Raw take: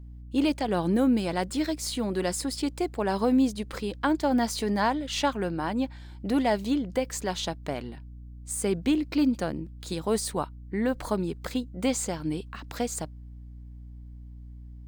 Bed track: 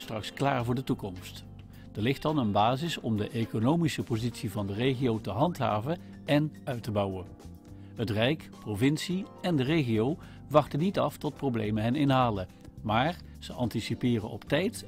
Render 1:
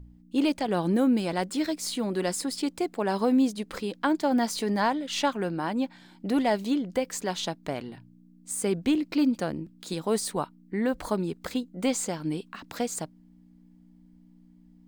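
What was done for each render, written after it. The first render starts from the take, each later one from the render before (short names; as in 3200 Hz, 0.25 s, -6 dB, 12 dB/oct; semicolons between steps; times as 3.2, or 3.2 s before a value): de-hum 60 Hz, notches 2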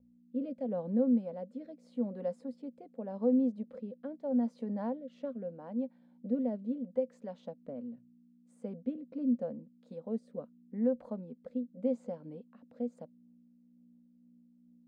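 rotary speaker horn 0.8 Hz, later 6.7 Hz, at 12.69; double band-pass 350 Hz, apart 1.1 oct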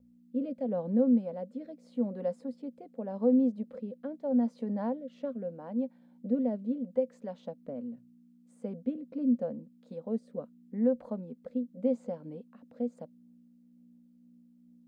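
gain +3 dB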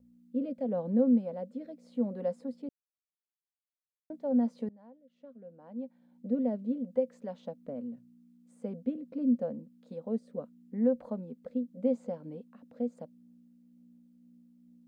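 2.69–4.1 mute; 4.69–6.47 fade in quadratic, from -23.5 dB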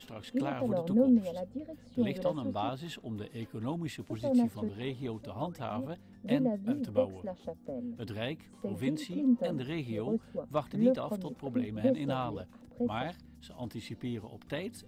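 add bed track -10 dB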